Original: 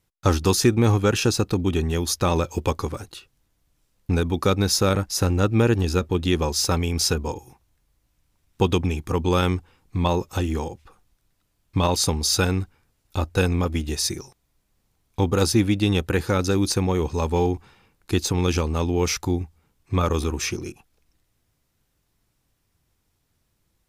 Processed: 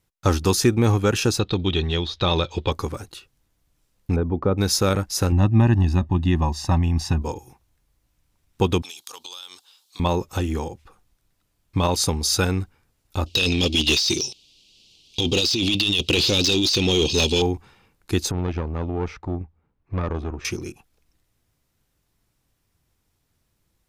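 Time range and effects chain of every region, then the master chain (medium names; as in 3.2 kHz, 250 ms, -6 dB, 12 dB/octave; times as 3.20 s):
1.39–2.72 s: peaking EQ 250 Hz -7.5 dB 0.22 oct + de-esser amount 80% + resonant low-pass 3.7 kHz, resonance Q 6.5
4.16–4.58 s: low-pass 1 kHz + upward compressor, threshold -23 dBFS
5.32–7.22 s: low-pass 1.3 kHz 6 dB/octave + comb 1.1 ms, depth 95%
8.82–10.00 s: high-pass 1.1 kHz + resonant high shelf 2.8 kHz +10 dB, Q 3 + compression 12:1, threshold -34 dBFS
13.26–17.42 s: FFT filter 360 Hz 0 dB, 1.7 kHz -28 dB, 2.8 kHz +14 dB, 4.7 kHz +14 dB, 12 kHz -8 dB + compressor with a negative ratio -23 dBFS + overdrive pedal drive 18 dB, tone 4.4 kHz, clips at -8 dBFS
18.31–20.45 s: Bessel low-pass 1.4 kHz + valve stage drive 17 dB, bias 0.65
whole clip: none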